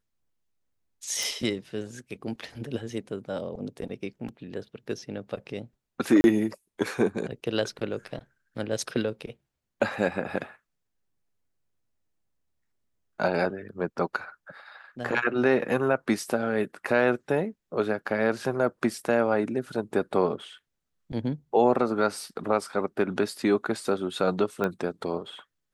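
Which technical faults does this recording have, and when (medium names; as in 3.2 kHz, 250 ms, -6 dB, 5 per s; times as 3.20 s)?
1.23 s: pop
6.21–6.24 s: dropout 31 ms
24.64 s: pop -16 dBFS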